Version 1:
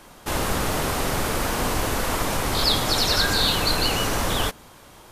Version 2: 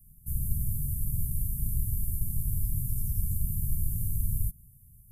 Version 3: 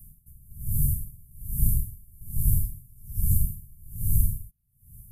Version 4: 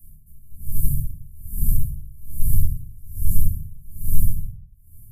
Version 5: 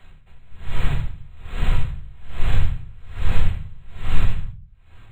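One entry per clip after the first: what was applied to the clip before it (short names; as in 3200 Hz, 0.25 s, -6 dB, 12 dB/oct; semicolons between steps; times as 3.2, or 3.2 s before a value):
inverse Chebyshev band-stop 440–4400 Hz, stop band 60 dB
dB-linear tremolo 1.2 Hz, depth 31 dB; gain +9 dB
shoebox room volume 300 m³, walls furnished, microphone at 2.5 m; gain -4.5 dB
decimation joined by straight lines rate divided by 4×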